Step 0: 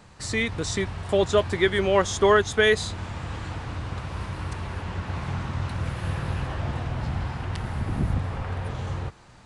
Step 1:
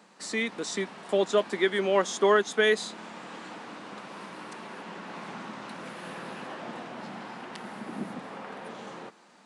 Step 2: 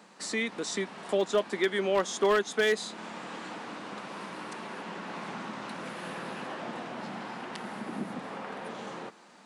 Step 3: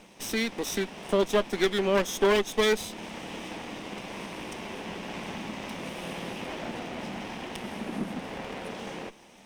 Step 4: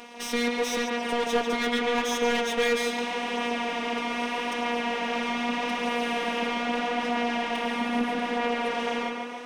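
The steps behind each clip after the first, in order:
elliptic high-pass filter 200 Hz, stop band 80 dB; level −3 dB
in parallel at 0 dB: downward compressor 4 to 1, threshold −37 dBFS, peak gain reduction 16.5 dB; on the sum: wave folding −13 dBFS; level −4 dB
lower of the sound and its delayed copy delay 0.34 ms; level +3.5 dB
mid-hump overdrive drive 24 dB, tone 2,100 Hz, clips at −11.5 dBFS; phases set to zero 239 Hz; tape delay 141 ms, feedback 66%, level −3 dB, low-pass 4,100 Hz; level −2.5 dB

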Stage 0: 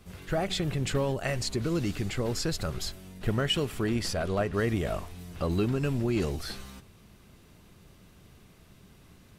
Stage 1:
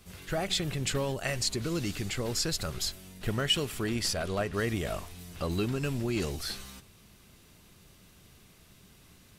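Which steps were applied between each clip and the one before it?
high-shelf EQ 2,200 Hz +8.5 dB
level −3.5 dB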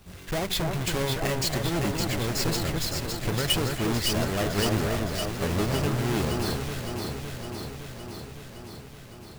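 each half-wave held at its own peak
on a send: delay that swaps between a low-pass and a high-pass 281 ms, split 1,900 Hz, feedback 82%, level −3 dB
on the sum: level −2 dB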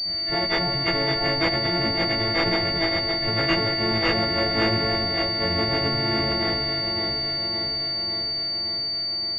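every partial snapped to a pitch grid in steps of 4 semitones
switching amplifier with a slow clock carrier 4,600 Hz

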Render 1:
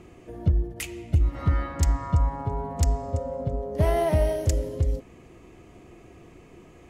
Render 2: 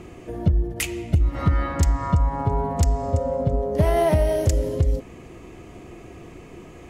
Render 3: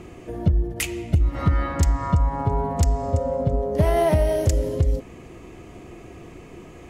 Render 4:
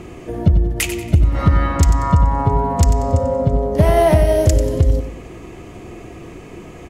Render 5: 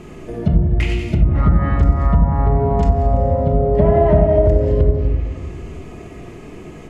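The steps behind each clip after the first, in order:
downward compressor 4 to 1, threshold −23 dBFS, peak gain reduction 6.5 dB; level +7.5 dB
no processing that can be heard
repeating echo 93 ms, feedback 36%, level −10.5 dB; level +6 dB
rectangular room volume 770 cubic metres, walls mixed, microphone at 1.4 metres; treble cut that deepens with the level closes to 1,200 Hz, closed at −4.5 dBFS; level −3.5 dB

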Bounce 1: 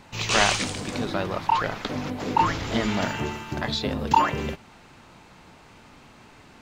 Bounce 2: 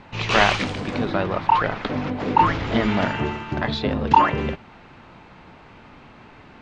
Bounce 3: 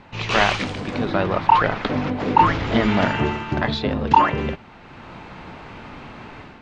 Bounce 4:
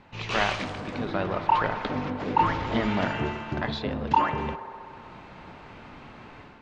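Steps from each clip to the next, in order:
low-pass filter 3,000 Hz 12 dB per octave; level +4.5 dB
automatic gain control gain up to 9 dB; level −1 dB
delay with a band-pass on its return 64 ms, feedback 85%, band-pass 800 Hz, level −13.5 dB; level −7.5 dB

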